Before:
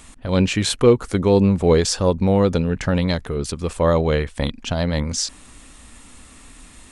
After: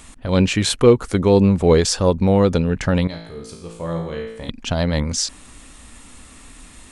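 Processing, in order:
0:03.07–0:04.49: tuned comb filter 56 Hz, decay 0.87 s, harmonics all, mix 90%
level +1.5 dB

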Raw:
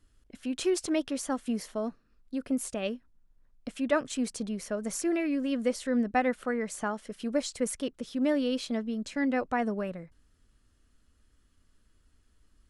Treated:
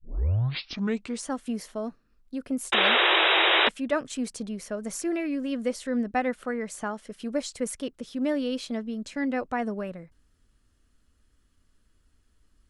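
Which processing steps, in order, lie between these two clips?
turntable start at the beginning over 1.30 s
sound drawn into the spectrogram noise, 0:02.72–0:03.69, 320–3,900 Hz −21 dBFS

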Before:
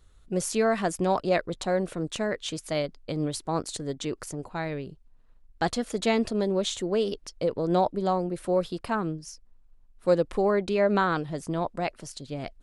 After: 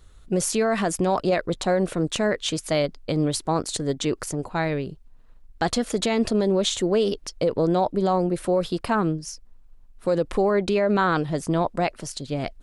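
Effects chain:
brickwall limiter −20 dBFS, peak gain reduction 9 dB
level +7 dB

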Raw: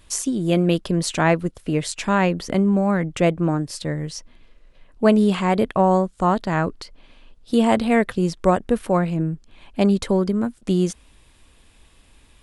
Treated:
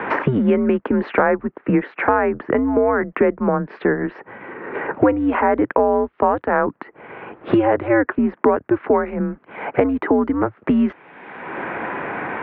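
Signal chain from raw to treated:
in parallel at 0 dB: brickwall limiter −12.5 dBFS, peak gain reduction 10 dB
on the sum: single-sideband voice off tune −130 Hz 400–2,100 Hz
multiband upward and downward compressor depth 100%
level +2 dB

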